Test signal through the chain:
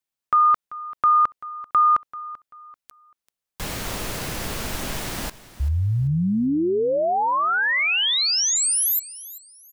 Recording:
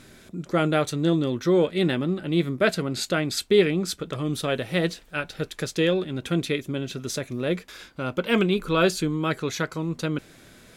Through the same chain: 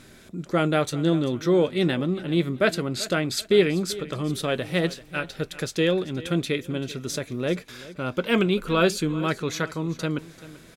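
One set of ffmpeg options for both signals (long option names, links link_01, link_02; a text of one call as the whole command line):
ffmpeg -i in.wav -af "aecho=1:1:388|776|1164:0.133|0.0387|0.0112" out.wav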